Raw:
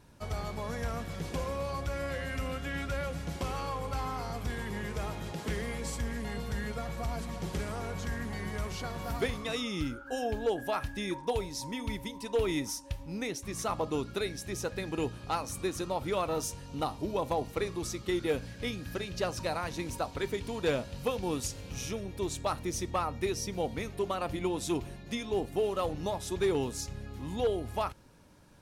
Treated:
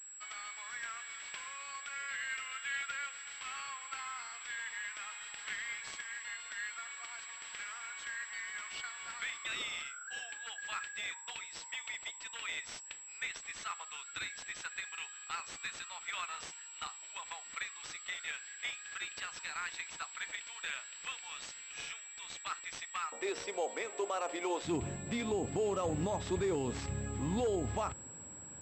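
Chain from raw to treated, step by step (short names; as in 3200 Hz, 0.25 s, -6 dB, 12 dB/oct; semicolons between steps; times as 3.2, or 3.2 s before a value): HPF 1500 Hz 24 dB/oct, from 23.12 s 430 Hz, from 24.65 s 69 Hz; limiter -30 dBFS, peak gain reduction 10.5 dB; pulse-width modulation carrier 7700 Hz; gain +4 dB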